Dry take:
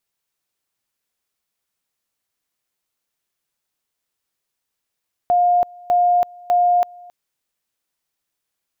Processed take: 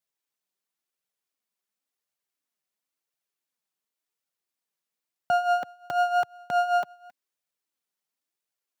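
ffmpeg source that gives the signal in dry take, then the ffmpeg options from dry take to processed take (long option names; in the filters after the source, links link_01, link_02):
-f lavfi -i "aevalsrc='pow(10,(-12-25.5*gte(mod(t,0.6),0.33))/20)*sin(2*PI*709*t)':duration=1.8:sample_rate=44100"
-af "flanger=delay=1.2:depth=4.3:regen=17:speed=0.94:shape=triangular,aeval=exprs='max(val(0),0)':channel_layout=same,highpass=frequency=130:width=0.5412,highpass=frequency=130:width=1.3066"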